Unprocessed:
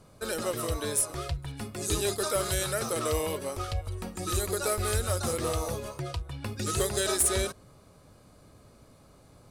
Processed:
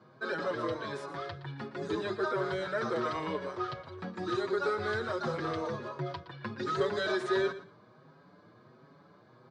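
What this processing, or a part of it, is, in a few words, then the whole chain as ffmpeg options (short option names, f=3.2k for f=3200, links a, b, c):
barber-pole flanger into a guitar amplifier: -filter_complex "[0:a]highpass=f=110:w=0.5412,highpass=f=110:w=1.3066,asplit=2[a][b];[b]adelay=6.1,afreqshift=1.4[c];[a][c]amix=inputs=2:normalize=1,asoftclip=type=tanh:threshold=-22.5dB,highpass=110,equalizer=f=160:t=q:w=4:g=5,equalizer=f=370:t=q:w=4:g=6,equalizer=f=1k:t=q:w=4:g=7,equalizer=f=1.6k:t=q:w=4:g=9,equalizer=f=2.7k:t=q:w=4:g=-7,lowpass=f=4.2k:w=0.5412,lowpass=f=4.2k:w=1.3066,asettb=1/sr,asplit=3[d][e][f];[d]atrim=end=1.804[g];[e]atrim=start=1.8:end=2.75,asetpts=PTS-STARTPTS,afade=t=in:d=0.004:c=qsin,afade=t=out:st=0.946:d=0.004:c=qsin,equalizer=f=4.8k:t=o:w=2.1:g=-5[h];[f]atrim=start=2.746[i];[g][h]acrossfade=d=0.004:c1=hsin:c2=qsin[j];[j][i]acrossfade=d=0.004:c1=qsin:c2=hsin,aecho=1:1:117|234:0.188|0.0339"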